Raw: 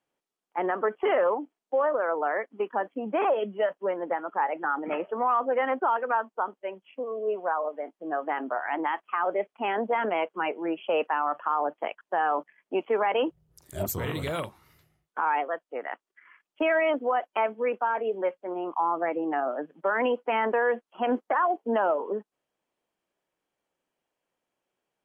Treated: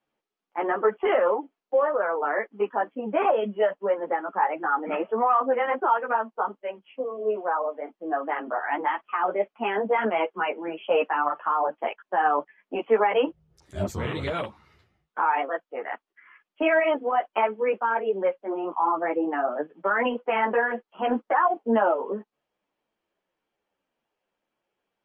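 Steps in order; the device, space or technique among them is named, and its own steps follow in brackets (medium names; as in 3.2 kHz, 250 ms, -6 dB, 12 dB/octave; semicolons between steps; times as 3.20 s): string-machine ensemble chorus (three-phase chorus; low-pass 4.4 kHz); trim +5.5 dB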